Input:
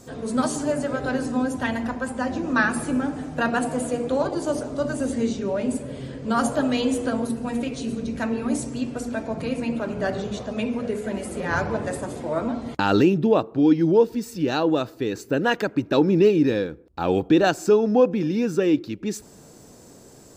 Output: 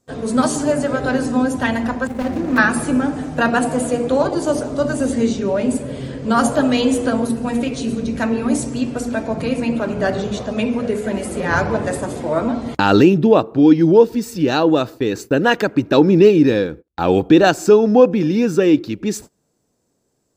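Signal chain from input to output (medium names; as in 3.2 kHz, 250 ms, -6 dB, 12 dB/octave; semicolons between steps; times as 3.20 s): 2.07–2.58 s: median filter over 41 samples; gate -39 dBFS, range -27 dB; trim +6.5 dB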